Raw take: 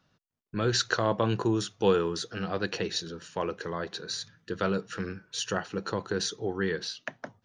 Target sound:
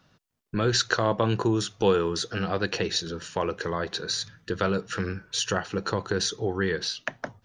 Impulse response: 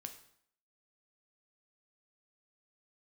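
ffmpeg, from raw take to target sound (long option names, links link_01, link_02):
-filter_complex "[0:a]asubboost=boost=2.5:cutoff=100,asplit=2[link_01][link_02];[link_02]acompressor=threshold=-34dB:ratio=6,volume=2.5dB[link_03];[link_01][link_03]amix=inputs=2:normalize=0"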